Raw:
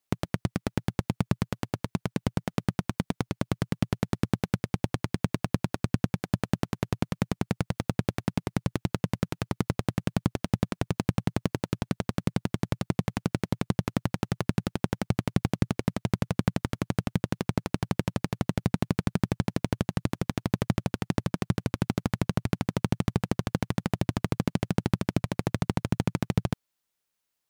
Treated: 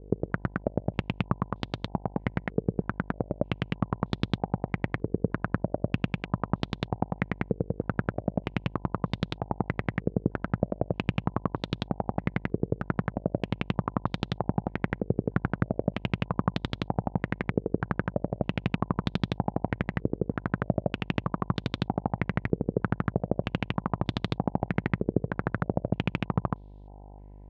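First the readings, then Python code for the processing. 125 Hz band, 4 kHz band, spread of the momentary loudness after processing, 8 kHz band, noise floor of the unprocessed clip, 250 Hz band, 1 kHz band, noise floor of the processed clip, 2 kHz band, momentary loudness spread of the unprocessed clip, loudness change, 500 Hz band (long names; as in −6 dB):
−2.0 dB, −1.0 dB, 3 LU, below −15 dB, −82 dBFS, −1.5 dB, +2.0 dB, −48 dBFS, +1.5 dB, 3 LU, −1.0 dB, +2.0 dB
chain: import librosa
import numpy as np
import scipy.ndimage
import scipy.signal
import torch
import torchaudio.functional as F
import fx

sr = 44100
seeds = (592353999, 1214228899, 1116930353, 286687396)

y = fx.dmg_buzz(x, sr, base_hz=50.0, harmonics=20, level_db=-45.0, tilt_db=-7, odd_only=False)
y = fx.filter_held_lowpass(y, sr, hz=3.2, low_hz=450.0, high_hz=3700.0)
y = F.gain(torch.from_numpy(y), -2.5).numpy()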